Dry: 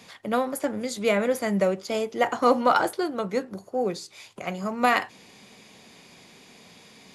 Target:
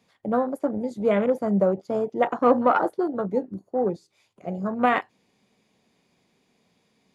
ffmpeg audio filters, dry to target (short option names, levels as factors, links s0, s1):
-af "afwtdn=0.0398,tiltshelf=f=970:g=3.5"